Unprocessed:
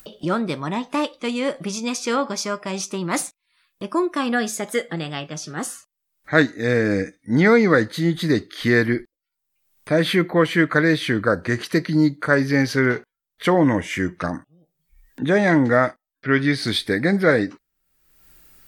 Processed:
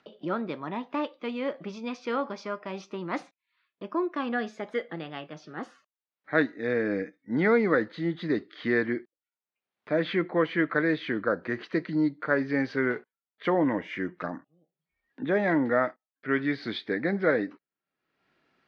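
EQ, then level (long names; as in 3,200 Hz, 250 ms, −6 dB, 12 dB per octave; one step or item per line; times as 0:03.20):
band-pass filter 220–7,000 Hz
high-frequency loss of the air 290 metres
−6.0 dB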